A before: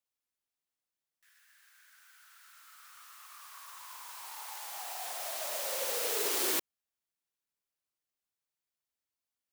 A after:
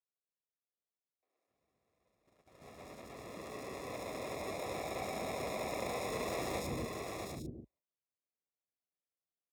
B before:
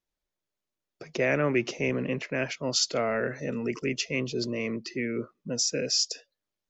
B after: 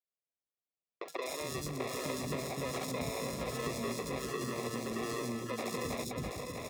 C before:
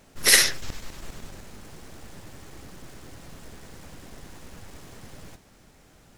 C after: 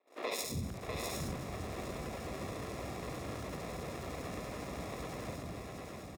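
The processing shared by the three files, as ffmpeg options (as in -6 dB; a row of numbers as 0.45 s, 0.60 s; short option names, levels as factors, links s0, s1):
-filter_complex "[0:a]acrusher=samples=29:mix=1:aa=0.000001,acrossover=split=180|3000[s0][s1][s2];[s1]acompressor=threshold=0.0316:ratio=6[s3];[s0][s3][s2]amix=inputs=3:normalize=0,highpass=f=50:w=0.5412,highpass=f=50:w=1.3066,aemphasis=mode=reproduction:type=75kf,acrossover=split=320|3900[s4][s5][s6];[s6]adelay=70[s7];[s4]adelay=250[s8];[s8][s5][s7]amix=inputs=3:normalize=0,agate=range=0.0708:threshold=0.00112:ratio=16:detection=peak,bass=f=250:g=-7,treble=f=4000:g=10,acompressor=threshold=0.00501:ratio=4,bandreject=f=880:w=5.1,asplit=2[s9][s10];[s10]aecho=0:1:185|651|756|797:0.188|0.562|0.376|0.188[s11];[s9][s11]amix=inputs=2:normalize=0,volume=2.66"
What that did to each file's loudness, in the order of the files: -7.0 LU, -9.0 LU, -23.5 LU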